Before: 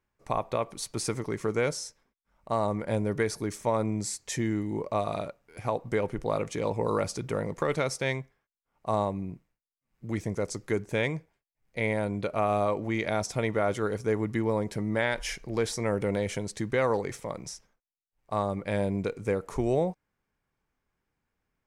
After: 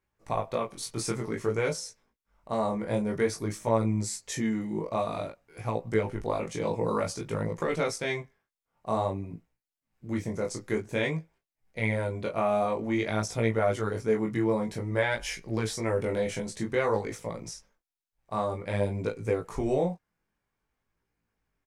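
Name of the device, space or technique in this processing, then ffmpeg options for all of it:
double-tracked vocal: -filter_complex "[0:a]asplit=2[link_01][link_02];[link_02]adelay=18,volume=-6dB[link_03];[link_01][link_03]amix=inputs=2:normalize=0,flanger=delay=17.5:depth=6.6:speed=0.52,volume=1.5dB"

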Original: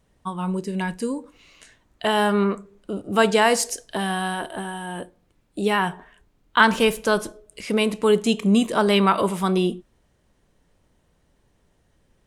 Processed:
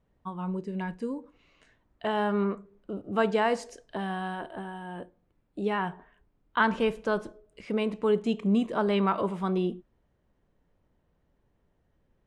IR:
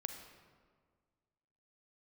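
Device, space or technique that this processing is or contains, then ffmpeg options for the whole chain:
through cloth: -af "lowpass=8600,highshelf=frequency=3600:gain=-17,volume=-6.5dB"

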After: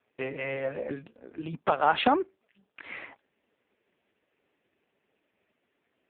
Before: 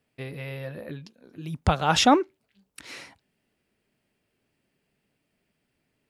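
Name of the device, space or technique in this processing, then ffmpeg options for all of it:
voicemail: -af "highpass=330,lowpass=2600,acompressor=threshold=-26dB:ratio=8,volume=8.5dB" -ar 8000 -c:a libopencore_amrnb -b:a 5150

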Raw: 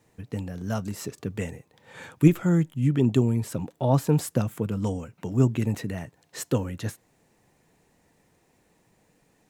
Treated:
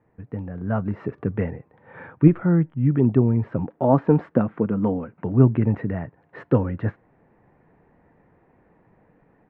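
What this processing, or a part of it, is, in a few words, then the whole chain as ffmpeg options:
action camera in a waterproof case: -filter_complex "[0:a]asettb=1/sr,asplit=3[link_01][link_02][link_03];[link_01]atrim=end=3.694[link_04];[link_02]atrim=start=3.69:end=5.16,asetpts=PTS-STARTPTS,afade=type=in:duration=0.004:curve=qsin,afade=type=out:start_time=1.466:duration=0.004:curve=qsin,lowshelf=frequency=160:width_type=q:width=1.5:gain=-6.5[link_05];[link_03]atrim=start=5.156[link_06];[link_04][link_05]acrossfade=duration=0.004:curve1=hsin:curve2=qsin[link_07];[link_07][link_06]acrossfade=duration=0.004:curve1=qsin:curve2=hsin,lowpass=frequency=1800:width=0.5412,lowpass=frequency=1800:width=1.3066,dynaudnorm=framelen=450:gausssize=3:maxgain=7dB" -ar 48000 -c:a aac -b:a 128k

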